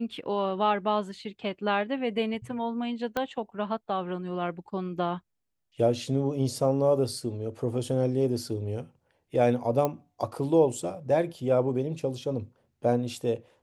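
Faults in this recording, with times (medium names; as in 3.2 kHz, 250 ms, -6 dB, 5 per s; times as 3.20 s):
3.17 s: pop -15 dBFS
9.85 s: pop -14 dBFS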